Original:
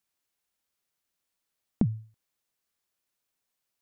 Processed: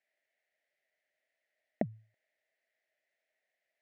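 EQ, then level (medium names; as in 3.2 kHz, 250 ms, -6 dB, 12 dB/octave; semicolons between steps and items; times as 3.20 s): two resonant band-passes 1.1 kHz, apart 1.6 oct; +14.0 dB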